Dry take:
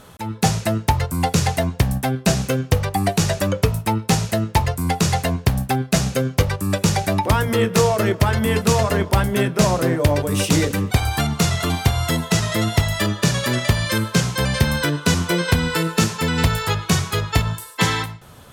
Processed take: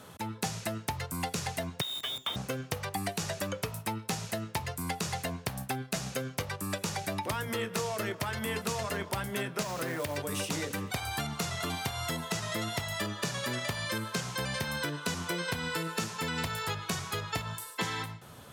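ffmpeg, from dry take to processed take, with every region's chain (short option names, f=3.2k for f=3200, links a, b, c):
-filter_complex "[0:a]asettb=1/sr,asplit=3[a][b][c];[a]atrim=end=1.814[d];[b]atrim=start=1.81:end=2.36,asetpts=PTS-STARTPTS,afade=t=in:d=0.004:c=qsin,afade=t=out:st=0.546:d=0.004:c=qsin,lowpass=f=3.2k:t=q:w=0.5098,lowpass=f=3.2k:t=q:w=0.6013,lowpass=f=3.2k:t=q:w=0.9,lowpass=f=3.2k:t=q:w=2.563,afreqshift=-3800,acrusher=bits=5:dc=4:mix=0:aa=0.000001[e];[c]atrim=start=2.356[f];[d][e]acrossfade=d=0.004:c1=hsin:c2=qsin[g];[g][f]acrossfade=d=0.004:c1=qsin:c2=hsin,asettb=1/sr,asplit=3[h][i][j];[h]atrim=end=9.624[k];[i]atrim=start=9.62:end=10.17,asetpts=PTS-STARTPTS,afade=t=in:d=0.004:c=qsin,afade=t=out:st=0.546:d=0.004:c=qsin,equalizer=f=1.9k:t=o:w=1.9:g=3,acompressor=threshold=-16dB:ratio=5:attack=3.2:release=140:knee=1:detection=peak,acrusher=bits=5:mode=log:mix=0:aa=0.000001[l];[j]atrim=start=10.166[m];[k][l]acrossfade=d=0.004:c1=hsin:c2=qsin[n];[n][m]acrossfade=d=0.004:c1=qsin:c2=hsin,highpass=93,acrossover=split=630|1300[o][p][q];[o]acompressor=threshold=-32dB:ratio=4[r];[p]acompressor=threshold=-36dB:ratio=4[s];[q]acompressor=threshold=-31dB:ratio=4[t];[r][s][t]amix=inputs=3:normalize=0,volume=-5dB"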